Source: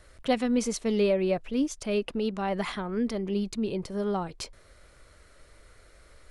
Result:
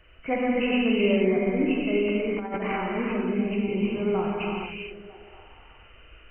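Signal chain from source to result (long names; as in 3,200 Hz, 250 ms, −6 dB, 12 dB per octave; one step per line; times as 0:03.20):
hearing-aid frequency compression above 2,000 Hz 4 to 1
notch filter 560 Hz, Q 12
on a send: echo through a band-pass that steps 238 ms, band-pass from 150 Hz, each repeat 0.7 octaves, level −9.5 dB
on the sum: reverb whose tail is shaped and stops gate 490 ms flat, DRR −4.5 dB
0:02.33–0:02.78: compressor whose output falls as the input rises −26 dBFS, ratio −0.5
level −2.5 dB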